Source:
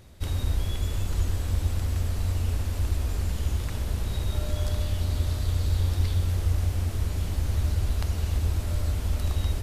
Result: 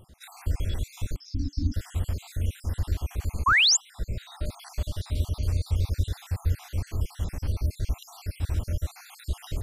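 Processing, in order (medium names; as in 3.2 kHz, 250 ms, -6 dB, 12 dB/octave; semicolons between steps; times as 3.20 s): random holes in the spectrogram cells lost 60%; 3.68–4.45 s: treble shelf 6.3 kHz -9.5 dB; 3.46–3.77 s: painted sound rise 980–7700 Hz -19 dBFS; 1.16–1.74 s: FFT filter 140 Hz 0 dB, 290 Hz +15 dB, 420 Hz -26 dB, 3.2 kHz -17 dB, 5.3 kHz +12 dB, 8.3 kHz -26 dB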